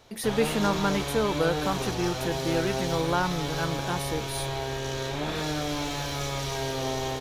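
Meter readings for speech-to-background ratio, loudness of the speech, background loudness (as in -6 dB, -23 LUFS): 1.5 dB, -29.5 LUFS, -31.0 LUFS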